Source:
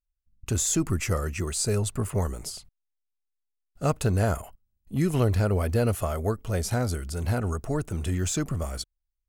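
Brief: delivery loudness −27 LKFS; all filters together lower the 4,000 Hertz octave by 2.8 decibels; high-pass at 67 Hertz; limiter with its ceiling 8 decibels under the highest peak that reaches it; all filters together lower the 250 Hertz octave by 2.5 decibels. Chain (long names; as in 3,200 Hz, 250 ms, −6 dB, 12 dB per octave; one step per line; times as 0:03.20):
high-pass filter 67 Hz
parametric band 250 Hz −3.5 dB
parametric band 4,000 Hz −3.5 dB
level +3.5 dB
brickwall limiter −16 dBFS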